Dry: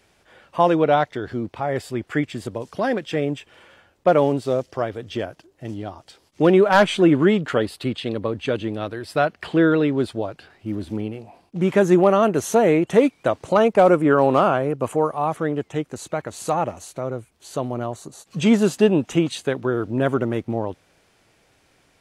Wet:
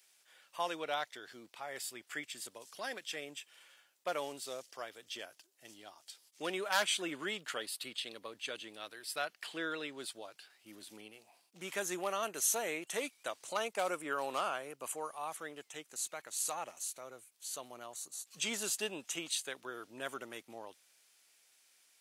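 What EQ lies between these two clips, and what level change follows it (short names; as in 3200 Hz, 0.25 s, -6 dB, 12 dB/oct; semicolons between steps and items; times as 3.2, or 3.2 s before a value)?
HPF 110 Hz; differentiator; 0.0 dB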